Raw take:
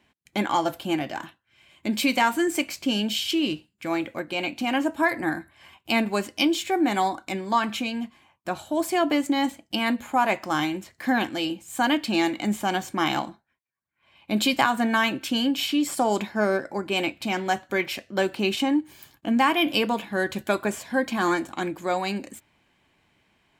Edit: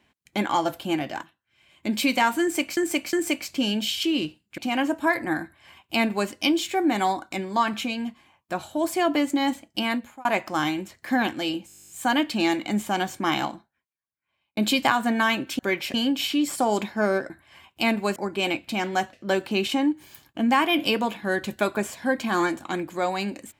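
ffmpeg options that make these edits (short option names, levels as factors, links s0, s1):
-filter_complex "[0:a]asplit=23[s0][s1][s2][s3][s4][s5][s6][s7][s8][s9][s10][s11][s12][s13][s14][s15][s16][s17][s18][s19][s20][s21][s22];[s0]atrim=end=1.23,asetpts=PTS-STARTPTS,afade=t=out:st=1.226:d=0.004:c=hsin:silence=0.211349[s23];[s1]atrim=start=1.23:end=2.772,asetpts=PTS-STARTPTS,afade=t=in:d=0.66:silence=0.211349[s24];[s2]atrim=start=2.408:end=2.772[s25];[s3]atrim=start=2.408:end=3.862[s26];[s4]atrim=start=4.538:end=10.21,asetpts=PTS-STARTPTS,afade=t=out:st=5.272:d=0.4[s27];[s5]atrim=start=10.21:end=11.652,asetpts=PTS-STARTPTS,afade=t=in:d=0.004:c=hsin[s28];[s6]atrim=start=11.628:end=11.652[s29];[s7]atrim=start=11.628:end=11.652[s30];[s8]atrim=start=11.628:end=11.652[s31];[s9]atrim=start=11.628:end=11.652[s32];[s10]atrim=start=11.628:end=11.652[s33];[s11]atrim=start=11.628:end=11.652[s34];[s12]atrim=start=11.628:end=11.652[s35];[s13]atrim=start=11.628:end=11.652[s36];[s14]atrim=start=11.628:end=11.652[s37];[s15]atrim=start=11.628:end=11.652[s38];[s16]atrim=start=11.628:end=14.31,asetpts=PTS-STARTPTS,afade=t=out:st=1.422:d=1.26[s39];[s17]atrim=start=14.31:end=15.332,asetpts=PTS-STARTPTS,afade=t=in:d=0.004:c=hsin[s40];[s18]atrim=start=17.658:end=18.012[s41];[s19]atrim=start=15.328:end=16.692[s42];[s20]atrim=start=5.388:end=6.252[s43];[s21]atrim=start=16.688:end=17.662[s44];[s22]atrim=start=18.008[s45];[s23][s24]concat=n=2:v=0:a=1[s46];[s46][s25]acrossfade=d=0.004:c1=hsin:c2=hsin[s47];[s47][s26]acrossfade=d=0.004:c1=hsin:c2=hsin[s48];[s27][s28]concat=n=2:v=0:a=1[s49];[s48][s49]acrossfade=d=0.004:c1=hsin:c2=hsin[s50];[s50][s29]acrossfade=d=0.004:c1=hsin:c2=hsin[s51];[s51][s30]acrossfade=d=0.004:c1=hsin:c2=hsin[s52];[s52][s31]acrossfade=d=0.004:c1=hsin:c2=hsin[s53];[s53][s32]acrossfade=d=0.004:c1=hsin:c2=hsin[s54];[s54][s33]acrossfade=d=0.004:c1=hsin:c2=hsin[s55];[s55][s34]acrossfade=d=0.004:c1=hsin:c2=hsin[s56];[s56][s35]acrossfade=d=0.004:c1=hsin:c2=hsin[s57];[s57][s36]acrossfade=d=0.004:c1=hsin:c2=hsin[s58];[s58][s37]acrossfade=d=0.004:c1=hsin:c2=hsin[s59];[s59][s38]acrossfade=d=0.004:c1=hsin:c2=hsin[s60];[s39][s40]concat=n=2:v=0:a=1[s61];[s60][s61]acrossfade=d=0.004:c1=hsin:c2=hsin[s62];[s62][s41]acrossfade=d=0.004:c1=hsin:c2=hsin[s63];[s63][s42]acrossfade=d=0.004:c1=hsin:c2=hsin[s64];[s64][s43]acrossfade=d=0.004:c1=hsin:c2=hsin[s65];[s65][s44]acrossfade=d=0.004:c1=hsin:c2=hsin[s66];[s66][s45]acrossfade=d=0.004:c1=hsin:c2=hsin"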